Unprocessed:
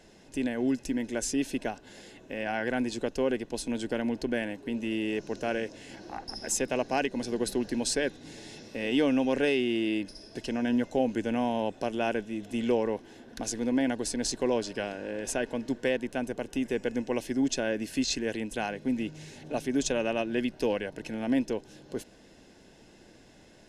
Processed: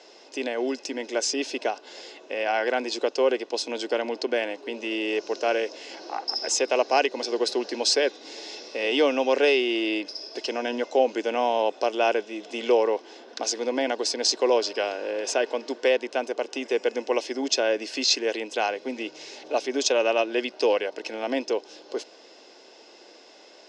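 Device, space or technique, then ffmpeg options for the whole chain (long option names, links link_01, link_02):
phone speaker on a table: -af "highpass=frequency=380:width=0.5412,highpass=frequency=380:width=1.3066,equalizer=frequency=1200:width_type=q:width=4:gain=3,equalizer=frequency=1700:width_type=q:width=4:gain=-7,equalizer=frequency=5000:width_type=q:width=4:gain=6,lowpass=frequency=6400:width=0.5412,lowpass=frequency=6400:width=1.3066,volume=8dB"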